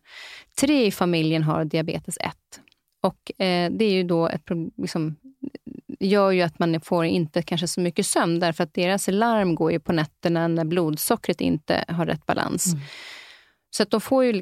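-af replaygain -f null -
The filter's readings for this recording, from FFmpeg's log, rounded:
track_gain = +3.7 dB
track_peak = 0.414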